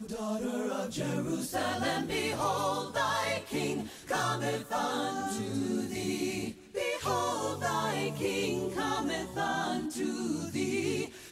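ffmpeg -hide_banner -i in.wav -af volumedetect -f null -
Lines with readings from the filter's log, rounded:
mean_volume: -32.7 dB
max_volume: -17.4 dB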